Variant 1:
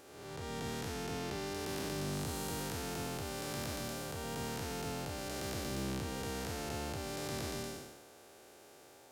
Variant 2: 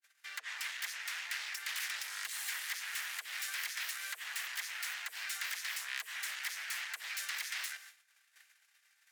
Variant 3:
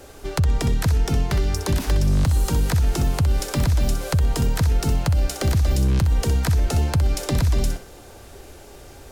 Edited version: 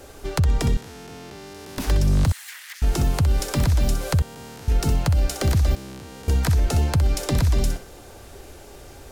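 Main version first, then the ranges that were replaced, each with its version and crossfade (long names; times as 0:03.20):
3
0:00.77–0:01.78: punch in from 1
0:02.32–0:02.82: punch in from 2
0:04.22–0:04.68: punch in from 1
0:05.75–0:06.28: punch in from 1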